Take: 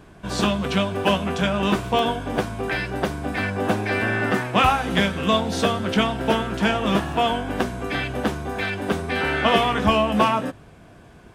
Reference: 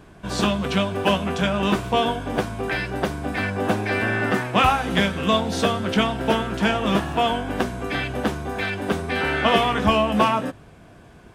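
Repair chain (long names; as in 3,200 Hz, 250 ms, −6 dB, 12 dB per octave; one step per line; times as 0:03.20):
repair the gap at 0:01.99/0:05.79/0:08.14, 1.9 ms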